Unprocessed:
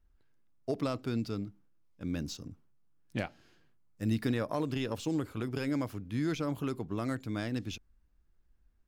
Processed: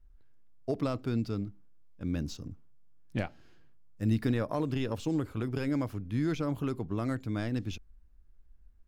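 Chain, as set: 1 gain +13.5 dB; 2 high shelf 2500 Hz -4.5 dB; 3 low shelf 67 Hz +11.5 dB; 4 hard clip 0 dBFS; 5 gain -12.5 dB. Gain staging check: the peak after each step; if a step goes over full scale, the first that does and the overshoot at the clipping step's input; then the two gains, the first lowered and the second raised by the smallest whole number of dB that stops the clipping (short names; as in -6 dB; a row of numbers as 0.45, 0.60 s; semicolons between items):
-5.5, -6.5, -5.0, -5.0, -17.5 dBFS; no overload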